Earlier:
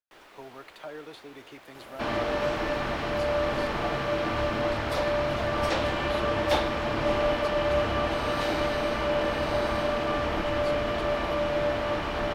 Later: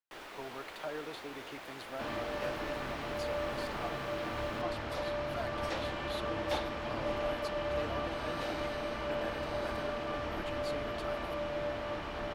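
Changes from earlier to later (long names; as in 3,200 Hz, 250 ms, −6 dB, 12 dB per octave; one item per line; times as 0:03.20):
first sound +5.0 dB
second sound −9.5 dB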